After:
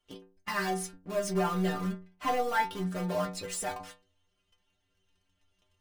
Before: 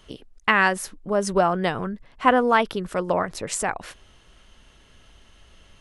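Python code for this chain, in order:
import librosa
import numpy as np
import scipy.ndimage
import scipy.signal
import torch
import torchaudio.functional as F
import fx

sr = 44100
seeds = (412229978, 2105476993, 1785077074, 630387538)

p1 = fx.spec_quant(x, sr, step_db=15)
p2 = fx.leveller(p1, sr, passes=3)
p3 = (np.mod(10.0 ** (13.0 / 20.0) * p2 + 1.0, 2.0) - 1.0) / 10.0 ** (13.0 / 20.0)
p4 = p2 + (p3 * 10.0 ** (-10.5 / 20.0))
p5 = fx.stiff_resonator(p4, sr, f0_hz=90.0, decay_s=0.47, stiffness=0.008)
y = p5 * 10.0 ** (-7.5 / 20.0)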